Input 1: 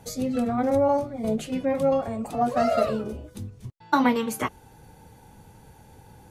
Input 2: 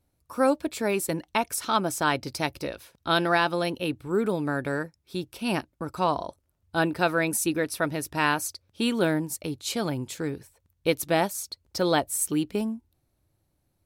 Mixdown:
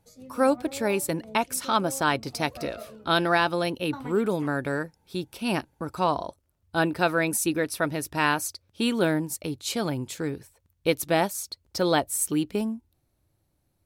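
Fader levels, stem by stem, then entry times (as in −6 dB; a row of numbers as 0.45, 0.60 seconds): −19.0, +0.5 decibels; 0.00, 0.00 seconds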